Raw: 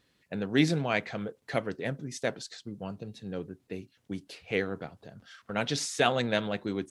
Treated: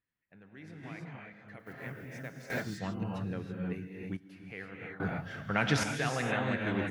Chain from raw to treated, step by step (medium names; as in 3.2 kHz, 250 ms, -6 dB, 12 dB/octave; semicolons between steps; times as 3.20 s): 1.59–2.45 s: block-companded coder 5-bit; graphic EQ 250/500/2000/4000/8000 Hz -3/-7/+5/-11/-9 dB; peak limiter -20 dBFS, peak gain reduction 8 dB; gated-style reverb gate 350 ms rising, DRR -0.5 dB; random-step tremolo 1.2 Hz, depth 95%; trim +6.5 dB